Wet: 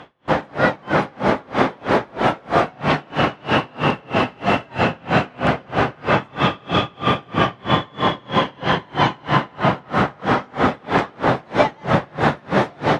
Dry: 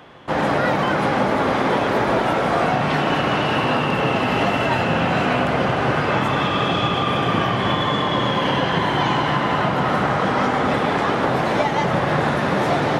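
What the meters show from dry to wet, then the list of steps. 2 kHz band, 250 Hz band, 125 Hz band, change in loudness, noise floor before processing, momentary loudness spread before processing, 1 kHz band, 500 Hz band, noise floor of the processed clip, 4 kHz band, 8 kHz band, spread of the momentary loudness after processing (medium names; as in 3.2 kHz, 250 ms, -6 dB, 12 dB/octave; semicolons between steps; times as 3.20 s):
-1.0 dB, -1.0 dB, -1.0 dB, -1.0 dB, -21 dBFS, 1 LU, -1.0 dB, -0.5 dB, -47 dBFS, -2.0 dB, no reading, 3 LU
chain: distance through air 53 m; logarithmic tremolo 3.1 Hz, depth 33 dB; trim +6 dB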